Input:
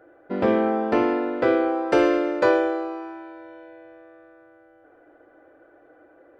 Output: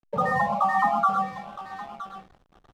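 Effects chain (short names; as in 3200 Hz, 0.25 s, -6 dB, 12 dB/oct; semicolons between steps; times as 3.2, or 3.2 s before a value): octaver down 2 oct, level -2 dB; reverb removal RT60 1 s; in parallel at +2.5 dB: compressor 6:1, threshold -28 dBFS, peak gain reduction 13.5 dB; on the sum: loudest bins only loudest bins 4; speed mistake 33 rpm record played at 78 rpm; on a send: feedback echo 0.966 s, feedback 18%, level -14.5 dB; on the sum: non-linear reverb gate 0.15 s rising, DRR 1 dB; backlash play -36.5 dBFS; gain -1 dB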